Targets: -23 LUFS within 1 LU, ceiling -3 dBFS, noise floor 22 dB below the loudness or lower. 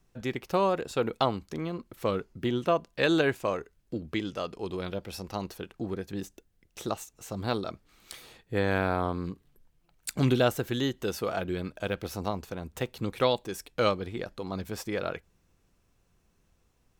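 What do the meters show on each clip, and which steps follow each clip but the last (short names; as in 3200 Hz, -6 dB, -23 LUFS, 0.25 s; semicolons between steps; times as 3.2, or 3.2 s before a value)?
loudness -31.0 LUFS; peak -9.0 dBFS; loudness target -23.0 LUFS
-> gain +8 dB; limiter -3 dBFS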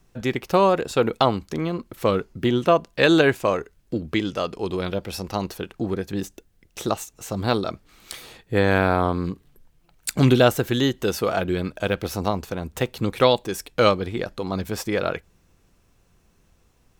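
loudness -23.0 LUFS; peak -3.0 dBFS; noise floor -62 dBFS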